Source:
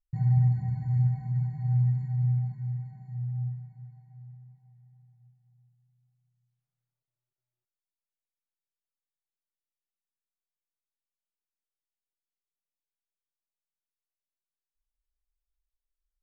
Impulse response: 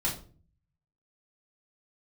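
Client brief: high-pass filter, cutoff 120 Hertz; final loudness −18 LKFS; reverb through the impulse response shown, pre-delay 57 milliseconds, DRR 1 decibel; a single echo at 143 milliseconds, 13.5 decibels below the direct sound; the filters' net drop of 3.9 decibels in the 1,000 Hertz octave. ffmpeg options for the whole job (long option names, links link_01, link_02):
-filter_complex "[0:a]highpass=120,equalizer=frequency=1000:width_type=o:gain=-6,aecho=1:1:143:0.211,asplit=2[link_01][link_02];[1:a]atrim=start_sample=2205,adelay=57[link_03];[link_02][link_03]afir=irnorm=-1:irlink=0,volume=-7.5dB[link_04];[link_01][link_04]amix=inputs=2:normalize=0,volume=5dB"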